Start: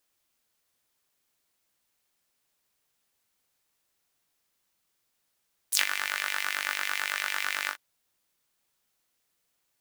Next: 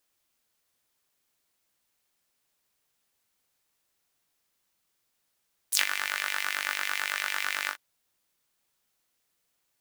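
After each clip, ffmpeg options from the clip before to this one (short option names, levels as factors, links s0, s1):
-af anull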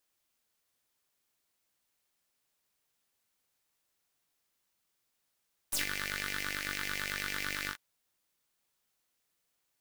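-af "aeval=exprs='(tanh(15.8*val(0)+0.65)-tanh(0.65))/15.8':c=same"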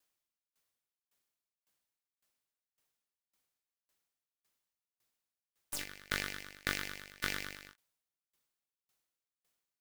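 -filter_complex "[0:a]asplit=2[s0][s1];[s1]acrusher=bits=3:mix=0:aa=0.5,volume=0.631[s2];[s0][s2]amix=inputs=2:normalize=0,aeval=exprs='val(0)*pow(10,-28*if(lt(mod(1.8*n/s,1),2*abs(1.8)/1000),1-mod(1.8*n/s,1)/(2*abs(1.8)/1000),(mod(1.8*n/s,1)-2*abs(1.8)/1000)/(1-2*abs(1.8)/1000))/20)':c=same,volume=1.12"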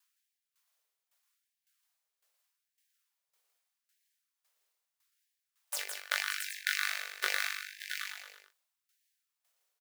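-af "aecho=1:1:162|577|673|771:0.501|0.266|0.501|0.299,afftfilt=real='re*gte(b*sr/1024,360*pow(1600/360,0.5+0.5*sin(2*PI*0.8*pts/sr)))':imag='im*gte(b*sr/1024,360*pow(1600/360,0.5+0.5*sin(2*PI*0.8*pts/sr)))':win_size=1024:overlap=0.75,volume=1.5"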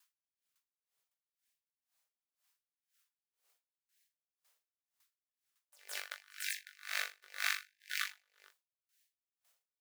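-af "aeval=exprs='val(0)*pow(10,-34*(0.5-0.5*cos(2*PI*2*n/s))/20)':c=same,volume=1.58"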